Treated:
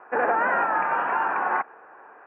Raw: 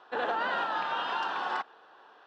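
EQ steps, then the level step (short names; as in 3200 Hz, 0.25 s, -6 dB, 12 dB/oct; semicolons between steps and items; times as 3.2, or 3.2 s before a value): HPF 47 Hz; Chebyshev low-pass 2400 Hz, order 6; +8.5 dB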